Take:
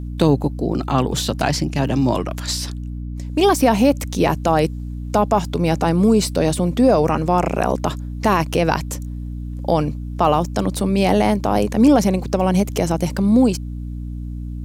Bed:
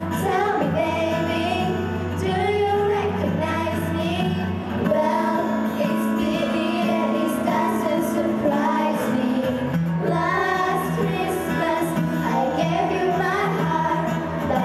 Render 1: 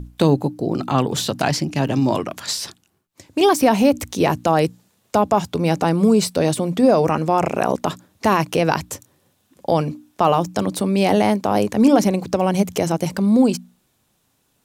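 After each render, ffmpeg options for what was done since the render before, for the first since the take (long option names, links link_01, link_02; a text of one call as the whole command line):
ffmpeg -i in.wav -af "bandreject=frequency=60:width_type=h:width=6,bandreject=frequency=120:width_type=h:width=6,bandreject=frequency=180:width_type=h:width=6,bandreject=frequency=240:width_type=h:width=6,bandreject=frequency=300:width_type=h:width=6" out.wav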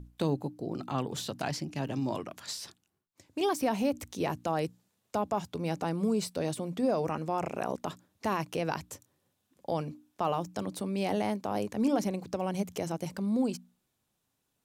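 ffmpeg -i in.wav -af "volume=-14dB" out.wav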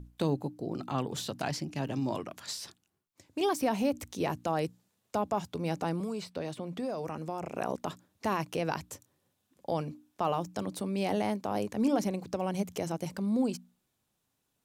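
ffmpeg -i in.wav -filter_complex "[0:a]asettb=1/sr,asplit=3[link_01][link_02][link_03];[link_01]atrim=end=6.004[link_04];[link_02]atrim=start=6:end=7.57,asetpts=PTS-STARTPTS,afade=type=in:duration=0.004:curve=qsin,afade=type=out:start_time=1.566:duration=0.004:curve=qsin,acrossover=split=680|4300[link_05][link_06][link_07];[link_05]acompressor=threshold=-35dB:ratio=4[link_08];[link_06]acompressor=threshold=-41dB:ratio=4[link_09];[link_07]acompressor=threshold=-57dB:ratio=4[link_10];[link_08][link_09][link_10]amix=inputs=3:normalize=0[link_11];[link_03]atrim=start=7.566[link_12];[link_04][link_11]acrossfade=duration=0.004:curve1=hsin:curve2=qsin[link_13];[link_13][link_12]acrossfade=duration=0.004:curve1=qsin:curve2=hsin" out.wav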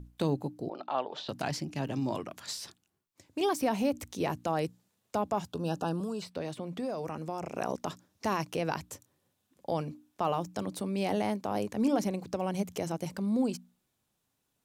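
ffmpeg -i in.wav -filter_complex "[0:a]asettb=1/sr,asplit=3[link_01][link_02][link_03];[link_01]atrim=end=0.694[link_04];[link_02]atrim=start=0.69:end=1.29,asetpts=PTS-STARTPTS,afade=type=in:duration=0.004:curve=qsin,afade=type=out:start_time=0.596:duration=0.004:curve=qsin,highpass=490,equalizer=frequency=610:width_type=q:width=4:gain=9,equalizer=frequency=870:width_type=q:width=4:gain=5,equalizer=frequency=2100:width_type=q:width=4:gain=-4,lowpass=frequency=4200:width=0.5412,lowpass=frequency=4200:width=1.3066[link_05];[link_03]atrim=start=1.286[link_06];[link_04][link_05]acrossfade=duration=0.004:curve1=hsin:curve2=qsin[link_07];[link_07][link_06]acrossfade=duration=0.004:curve1=qsin:curve2=hsin,asettb=1/sr,asplit=3[link_08][link_09][link_10];[link_08]atrim=end=5.524[link_11];[link_09]atrim=start=5.52:end=6.22,asetpts=PTS-STARTPTS,afade=type=in:duration=0.004:curve=qsin,afade=type=out:start_time=0.696:duration=0.004:curve=qsin,asuperstop=centerf=2100:order=20:qfactor=2.8[link_12];[link_10]atrim=start=6.216[link_13];[link_11][link_12]acrossfade=duration=0.004:curve1=hsin:curve2=qsin[link_14];[link_14][link_13]acrossfade=duration=0.004:curve1=qsin:curve2=hsin,asettb=1/sr,asplit=3[link_15][link_16][link_17];[link_15]atrim=end=7.334[link_18];[link_16]atrim=start=7.33:end=8.51,asetpts=PTS-STARTPTS,afade=type=in:duration=0.004:curve=qsin,afade=type=out:start_time=1.176:duration=0.004:curve=qsin,equalizer=frequency=5600:width=2.6:gain=6[link_19];[link_17]atrim=start=8.506[link_20];[link_18][link_19]acrossfade=duration=0.004:curve1=hsin:curve2=qsin[link_21];[link_21][link_20]acrossfade=duration=0.004:curve1=qsin:curve2=hsin" out.wav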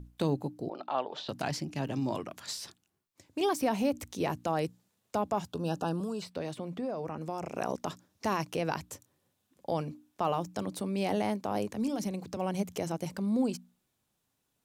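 ffmpeg -i in.wav -filter_complex "[0:a]asettb=1/sr,asplit=3[link_01][link_02][link_03];[link_01]atrim=end=6.774[link_04];[link_02]atrim=start=6.77:end=7.21,asetpts=PTS-STARTPTS,afade=type=in:duration=0.004:curve=qsin,afade=type=out:start_time=0.436:duration=0.004:curve=qsin,highshelf=frequency=3500:gain=-11[link_05];[link_03]atrim=start=7.206[link_06];[link_04][link_05]acrossfade=duration=0.004:curve1=hsin:curve2=qsin[link_07];[link_07][link_06]acrossfade=duration=0.004:curve1=qsin:curve2=hsin,asettb=1/sr,asplit=3[link_08][link_09][link_10];[link_08]atrim=end=11.714[link_11];[link_09]atrim=start=11.71:end=12.37,asetpts=PTS-STARTPTS,afade=type=in:duration=0.004:curve=qsin,afade=type=out:start_time=0.656:duration=0.004:curve=qsin,acrossover=split=220|3000[link_12][link_13][link_14];[link_13]acompressor=threshold=-40dB:ratio=2:attack=3.2:release=140:knee=2.83:detection=peak[link_15];[link_12][link_15][link_14]amix=inputs=3:normalize=0[link_16];[link_10]atrim=start=12.366[link_17];[link_11][link_16]acrossfade=duration=0.004:curve1=hsin:curve2=qsin[link_18];[link_18][link_17]acrossfade=duration=0.004:curve1=qsin:curve2=hsin" out.wav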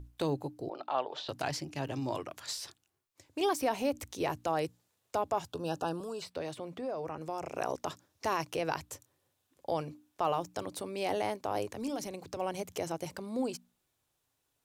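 ffmpeg -i in.wav -af "equalizer=frequency=200:width=2.5:gain=-13.5" out.wav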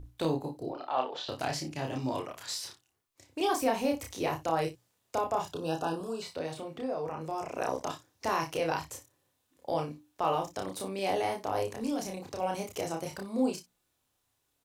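ffmpeg -i in.wav -filter_complex "[0:a]asplit=2[link_01][link_02];[link_02]adelay=31,volume=-3dB[link_03];[link_01][link_03]amix=inputs=2:normalize=0,aecho=1:1:27|59:0.316|0.158" out.wav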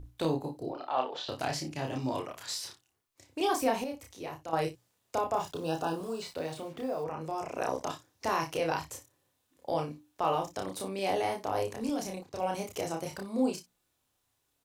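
ffmpeg -i in.wav -filter_complex "[0:a]asettb=1/sr,asplit=3[link_01][link_02][link_03];[link_01]atrim=end=5.344[link_04];[link_02]atrim=start=5.34:end=7.04,asetpts=PTS-STARTPTS,afade=type=in:duration=0.004:curve=qsin,afade=type=out:start_time=1.696:duration=0.004:curve=qsin,acrusher=bits=8:mix=0:aa=0.5[link_05];[link_03]atrim=start=7.036[link_06];[link_04][link_05]acrossfade=duration=0.004:curve1=hsin:curve2=qsin[link_07];[link_07][link_06]acrossfade=duration=0.004:curve1=qsin:curve2=hsin,asettb=1/sr,asplit=3[link_08][link_09][link_10];[link_08]atrim=end=11.894[link_11];[link_09]atrim=start=11.89:end=12.53,asetpts=PTS-STARTPTS,afade=type=in:duration=0.004:curve=qsin,afade=type=out:start_time=0.636:duration=0.004:curve=qsin,agate=range=-11dB:threshold=-42dB:ratio=16:release=100:detection=peak[link_12];[link_10]atrim=start=12.526[link_13];[link_11][link_12]acrossfade=duration=0.004:curve1=hsin:curve2=qsin[link_14];[link_14][link_13]acrossfade=duration=0.004:curve1=qsin:curve2=hsin,asplit=3[link_15][link_16][link_17];[link_15]atrim=end=3.842[link_18];[link_16]atrim=start=3.838:end=4.532,asetpts=PTS-STARTPTS,volume=-9dB[link_19];[link_17]atrim=start=4.528[link_20];[link_18][link_19]acrossfade=duration=0.004:curve1=hsin:curve2=hsin[link_21];[link_21][link_20]acrossfade=duration=0.004:curve1=hsin:curve2=hsin" out.wav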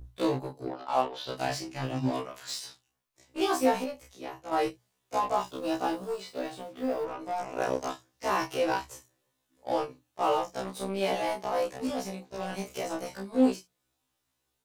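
ffmpeg -i in.wav -filter_complex "[0:a]asplit=2[link_01][link_02];[link_02]acrusher=bits=4:mix=0:aa=0.5,volume=-6dB[link_03];[link_01][link_03]amix=inputs=2:normalize=0,afftfilt=real='re*1.73*eq(mod(b,3),0)':imag='im*1.73*eq(mod(b,3),0)':win_size=2048:overlap=0.75" out.wav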